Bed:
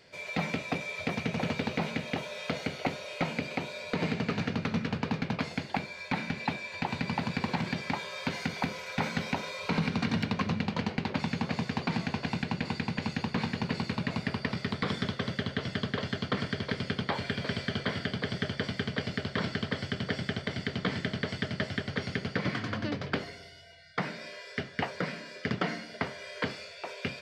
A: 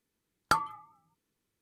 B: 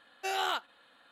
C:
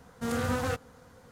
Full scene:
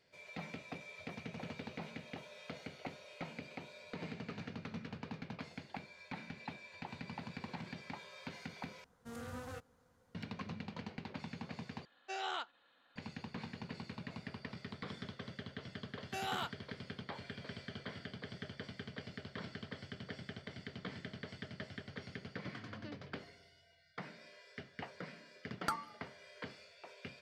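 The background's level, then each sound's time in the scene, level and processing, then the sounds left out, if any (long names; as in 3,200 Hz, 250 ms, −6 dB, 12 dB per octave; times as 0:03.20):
bed −14.5 dB
0:08.84: overwrite with C −16.5 dB
0:11.85: overwrite with B −8.5 dB + low-pass filter 6,700 Hz 24 dB per octave
0:15.89: mix in B −8 dB
0:25.17: mix in A −10.5 dB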